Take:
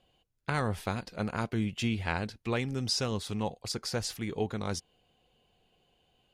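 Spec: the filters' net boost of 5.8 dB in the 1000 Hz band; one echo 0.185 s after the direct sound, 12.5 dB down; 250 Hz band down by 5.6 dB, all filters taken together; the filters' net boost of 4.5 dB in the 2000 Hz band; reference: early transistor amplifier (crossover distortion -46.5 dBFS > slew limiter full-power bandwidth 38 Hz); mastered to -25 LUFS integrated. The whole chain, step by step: bell 250 Hz -7.5 dB; bell 1000 Hz +7 dB; bell 2000 Hz +3.5 dB; echo 0.185 s -12.5 dB; crossover distortion -46.5 dBFS; slew limiter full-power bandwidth 38 Hz; gain +11 dB

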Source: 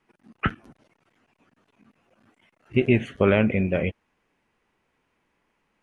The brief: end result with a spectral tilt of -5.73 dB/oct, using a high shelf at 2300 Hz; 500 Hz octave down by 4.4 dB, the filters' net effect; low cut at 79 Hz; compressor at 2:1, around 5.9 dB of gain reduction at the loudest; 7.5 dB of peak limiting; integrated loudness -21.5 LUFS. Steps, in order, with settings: HPF 79 Hz; bell 500 Hz -5.5 dB; high shelf 2300 Hz -7.5 dB; compressor 2:1, threshold -27 dBFS; gain +12.5 dB; limiter -7.5 dBFS

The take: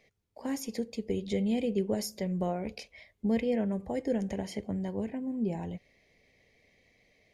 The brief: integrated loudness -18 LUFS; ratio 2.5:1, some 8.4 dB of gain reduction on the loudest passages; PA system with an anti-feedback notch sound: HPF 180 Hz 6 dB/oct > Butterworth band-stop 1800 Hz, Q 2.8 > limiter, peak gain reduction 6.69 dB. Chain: compressor 2.5:1, threshold -38 dBFS; HPF 180 Hz 6 dB/oct; Butterworth band-stop 1800 Hz, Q 2.8; gain +26 dB; limiter -8.5 dBFS

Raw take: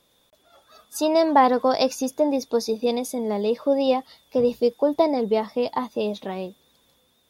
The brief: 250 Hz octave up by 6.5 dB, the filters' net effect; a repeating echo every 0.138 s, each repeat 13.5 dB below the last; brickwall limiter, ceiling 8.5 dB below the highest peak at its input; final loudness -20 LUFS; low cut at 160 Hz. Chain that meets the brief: HPF 160 Hz; bell 250 Hz +8 dB; limiter -12 dBFS; feedback echo 0.138 s, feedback 21%, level -13.5 dB; gain +2 dB

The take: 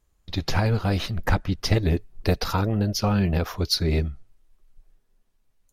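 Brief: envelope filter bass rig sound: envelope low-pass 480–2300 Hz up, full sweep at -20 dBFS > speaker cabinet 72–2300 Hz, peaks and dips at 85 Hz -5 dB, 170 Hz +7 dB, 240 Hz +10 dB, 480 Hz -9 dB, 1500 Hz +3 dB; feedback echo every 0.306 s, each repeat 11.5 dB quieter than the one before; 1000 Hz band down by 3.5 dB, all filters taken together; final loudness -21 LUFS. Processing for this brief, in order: bell 1000 Hz -5 dB; feedback echo 0.306 s, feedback 27%, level -11.5 dB; envelope low-pass 480–2300 Hz up, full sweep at -20 dBFS; speaker cabinet 72–2300 Hz, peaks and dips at 85 Hz -5 dB, 170 Hz +7 dB, 240 Hz +10 dB, 480 Hz -9 dB, 1500 Hz +3 dB; gain +1.5 dB

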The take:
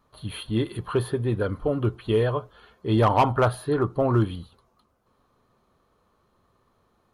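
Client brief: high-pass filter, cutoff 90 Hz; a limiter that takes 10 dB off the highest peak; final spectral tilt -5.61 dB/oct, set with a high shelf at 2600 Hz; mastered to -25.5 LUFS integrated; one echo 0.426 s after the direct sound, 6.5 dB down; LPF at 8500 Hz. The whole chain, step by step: HPF 90 Hz; LPF 8500 Hz; high shelf 2600 Hz +7 dB; limiter -17.5 dBFS; echo 0.426 s -6.5 dB; gain +3 dB

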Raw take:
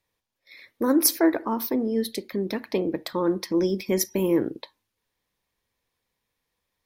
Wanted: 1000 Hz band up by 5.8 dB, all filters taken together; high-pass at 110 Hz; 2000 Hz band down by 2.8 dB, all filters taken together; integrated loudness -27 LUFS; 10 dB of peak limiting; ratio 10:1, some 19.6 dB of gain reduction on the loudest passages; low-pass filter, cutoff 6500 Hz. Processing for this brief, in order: HPF 110 Hz; LPF 6500 Hz; bell 1000 Hz +8 dB; bell 2000 Hz -6.5 dB; compressor 10:1, threshold -35 dBFS; gain +16 dB; limiter -16 dBFS

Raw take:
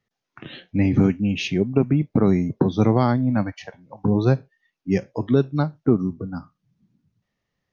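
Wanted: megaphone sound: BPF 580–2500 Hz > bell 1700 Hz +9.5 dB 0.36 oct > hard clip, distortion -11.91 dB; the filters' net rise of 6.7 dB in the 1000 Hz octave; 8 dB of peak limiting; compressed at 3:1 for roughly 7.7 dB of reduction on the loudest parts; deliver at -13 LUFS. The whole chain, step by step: bell 1000 Hz +9 dB; compressor 3:1, threshold -22 dBFS; limiter -17.5 dBFS; BPF 580–2500 Hz; bell 1700 Hz +9.5 dB 0.36 oct; hard clip -28.5 dBFS; gain +25.5 dB

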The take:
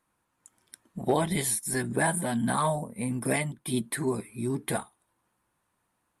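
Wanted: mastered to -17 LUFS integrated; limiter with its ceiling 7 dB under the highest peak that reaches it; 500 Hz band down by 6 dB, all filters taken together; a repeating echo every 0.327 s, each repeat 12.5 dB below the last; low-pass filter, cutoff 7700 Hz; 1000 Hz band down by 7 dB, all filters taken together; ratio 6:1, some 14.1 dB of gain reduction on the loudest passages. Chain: LPF 7700 Hz; bell 500 Hz -6.5 dB; bell 1000 Hz -6.5 dB; compressor 6:1, threshold -41 dBFS; limiter -37 dBFS; feedback echo 0.327 s, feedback 24%, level -12.5 dB; gain +29.5 dB

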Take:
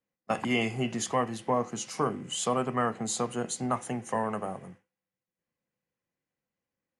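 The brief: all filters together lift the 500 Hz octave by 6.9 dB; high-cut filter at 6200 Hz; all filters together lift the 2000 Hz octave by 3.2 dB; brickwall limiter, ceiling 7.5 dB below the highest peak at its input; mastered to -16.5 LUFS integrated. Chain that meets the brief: LPF 6200 Hz; bell 500 Hz +8 dB; bell 2000 Hz +3.5 dB; gain +14 dB; limiter -3.5 dBFS

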